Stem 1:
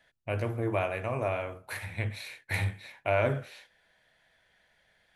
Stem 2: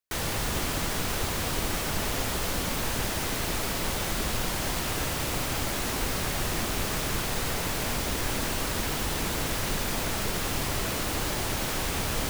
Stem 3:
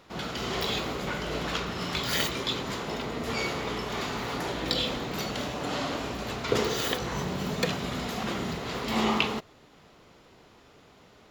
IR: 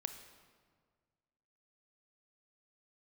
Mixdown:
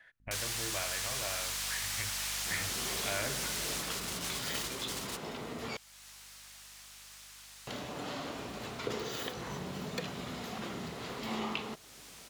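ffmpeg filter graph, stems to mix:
-filter_complex "[0:a]equalizer=frequency=1700:width_type=o:width=1.1:gain=13,volume=-3.5dB,asplit=2[link_01][link_02];[1:a]highpass=950,equalizer=frequency=6500:width=0.36:gain=11,aeval=exprs='val(0)+0.0126*(sin(2*PI*50*n/s)+sin(2*PI*2*50*n/s)/2+sin(2*PI*3*50*n/s)/3+sin(2*PI*4*50*n/s)/4+sin(2*PI*5*50*n/s)/5)':channel_layout=same,adelay=200,volume=-1.5dB[link_03];[2:a]highpass=74,adelay=2350,volume=-0.5dB,asplit=3[link_04][link_05][link_06];[link_04]atrim=end=5.77,asetpts=PTS-STARTPTS,afade=type=out:start_time=5.766:duration=0.004:curve=hsin[link_07];[link_05]atrim=start=5.77:end=7.67,asetpts=PTS-STARTPTS,volume=0[link_08];[link_06]atrim=start=7.67,asetpts=PTS-STARTPTS,afade=type=in:duration=0.004:curve=hsin[link_09];[link_07][link_08][link_09]concat=n=3:v=0:a=1[link_10];[link_02]apad=whole_len=551137[link_11];[link_03][link_11]sidechaingate=range=-24dB:threshold=-60dB:ratio=16:detection=peak[link_12];[link_01][link_12][link_10]amix=inputs=3:normalize=0,acompressor=threshold=-52dB:ratio=1.5"

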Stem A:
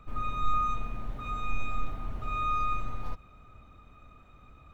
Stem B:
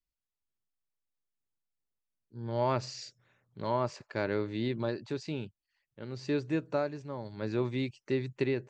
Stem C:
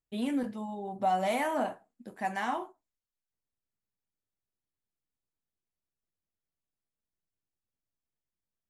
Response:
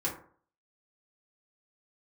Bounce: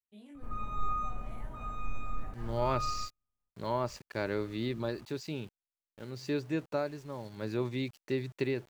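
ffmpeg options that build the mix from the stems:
-filter_complex "[0:a]equalizer=frequency=3300:width_type=o:width=1.2:gain=-9,adelay=350,volume=-4.5dB[link_01];[1:a]highshelf=frequency=5600:gain=7,aeval=exprs='val(0)*gte(abs(val(0)),0.00299)':channel_layout=same,volume=-2dB,asplit=2[link_02][link_03];[2:a]alimiter=level_in=6dB:limit=-24dB:level=0:latency=1:release=33,volume=-6dB,flanger=delay=18:depth=4.6:speed=0.89,volume=-14.5dB[link_04];[link_03]apad=whole_len=224110[link_05];[link_01][link_05]sidechaingate=range=-50dB:threshold=-42dB:ratio=16:detection=peak[link_06];[link_06][link_02][link_04]amix=inputs=3:normalize=0"

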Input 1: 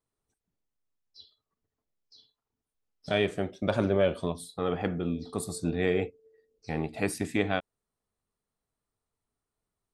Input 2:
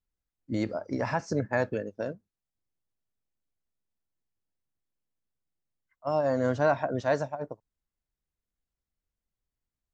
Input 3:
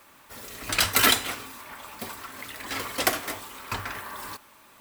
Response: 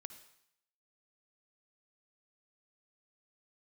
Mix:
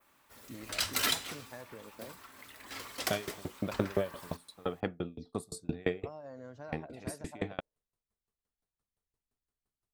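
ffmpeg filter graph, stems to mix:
-filter_complex "[0:a]aeval=exprs='val(0)*pow(10,-32*if(lt(mod(5.8*n/s,1),2*abs(5.8)/1000),1-mod(5.8*n/s,1)/(2*abs(5.8)/1000),(mod(5.8*n/s,1)-2*abs(5.8)/1000)/(1-2*abs(5.8)/1000))/20)':channel_layout=same,volume=0.5dB[link_01];[1:a]acompressor=threshold=-36dB:ratio=6,volume=-9dB,asplit=2[link_02][link_03];[link_03]volume=-19.5dB[link_04];[2:a]adynamicequalizer=threshold=0.0112:dfrequency=5100:dqfactor=0.8:tfrequency=5100:tqfactor=0.8:attack=5:release=100:ratio=0.375:range=3:mode=boostabove:tftype=bell,volume=-13dB[link_05];[3:a]atrim=start_sample=2205[link_06];[link_04][link_06]afir=irnorm=-1:irlink=0[link_07];[link_01][link_02][link_05][link_07]amix=inputs=4:normalize=0"

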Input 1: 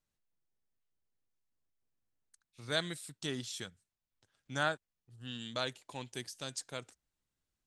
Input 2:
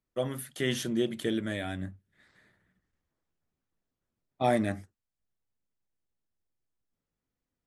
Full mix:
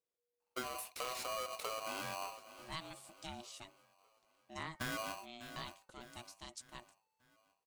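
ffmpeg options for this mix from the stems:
ffmpeg -i stem1.wav -i stem2.wav -filter_complex "[0:a]bandreject=frequency=344.1:width_type=h:width=4,bandreject=frequency=688.2:width_type=h:width=4,bandreject=frequency=1032.3:width_type=h:width=4,bandreject=frequency=1376.4:width_type=h:width=4,bandreject=frequency=1720.5:width_type=h:width=4,aeval=exprs='val(0)*sin(2*PI*480*n/s)':channel_layout=same,volume=-6.5dB[link_01];[1:a]asoftclip=type=tanh:threshold=-26dB,acrusher=bits=3:mode=log:mix=0:aa=0.000001,aeval=exprs='val(0)*sgn(sin(2*PI*880*n/s))':channel_layout=same,adelay=400,volume=-3.5dB,asplit=2[link_02][link_03];[link_03]volume=-19.5dB,aecho=0:1:598|1196|1794|2392|2990|3588|4186:1|0.47|0.221|0.104|0.0488|0.0229|0.0108[link_04];[link_01][link_02][link_04]amix=inputs=3:normalize=0,acompressor=threshold=-38dB:ratio=10" out.wav

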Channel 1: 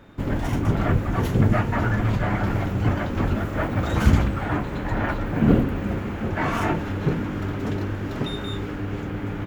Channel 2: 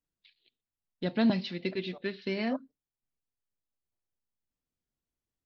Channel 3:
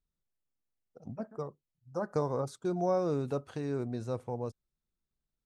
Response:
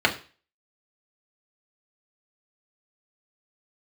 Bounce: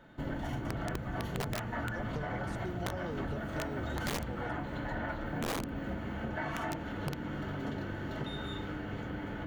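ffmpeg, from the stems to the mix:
-filter_complex "[0:a]equalizer=frequency=390:width_type=o:width=0.53:gain=-5,volume=-12.5dB,asplit=2[link_01][link_02];[link_02]volume=-11.5dB[link_03];[2:a]acompressor=threshold=-32dB:ratio=6,volume=-0.5dB[link_04];[3:a]atrim=start_sample=2205[link_05];[link_03][link_05]afir=irnorm=-1:irlink=0[link_06];[link_01][link_04][link_06]amix=inputs=3:normalize=0,aeval=exprs='(mod(8.91*val(0)+1,2)-1)/8.91':channel_layout=same,acompressor=threshold=-33dB:ratio=6"

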